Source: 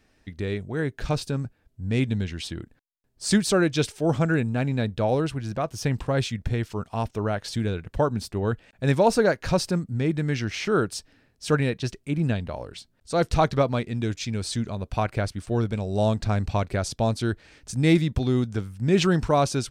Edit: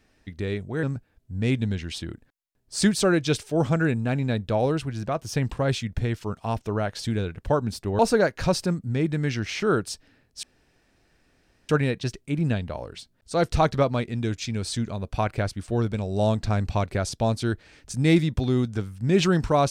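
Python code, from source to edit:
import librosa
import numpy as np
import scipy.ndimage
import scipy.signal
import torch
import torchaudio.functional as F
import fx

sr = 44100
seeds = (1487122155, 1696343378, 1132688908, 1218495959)

y = fx.edit(x, sr, fx.cut(start_s=0.83, length_s=0.49),
    fx.cut(start_s=8.48, length_s=0.56),
    fx.insert_room_tone(at_s=11.48, length_s=1.26), tone=tone)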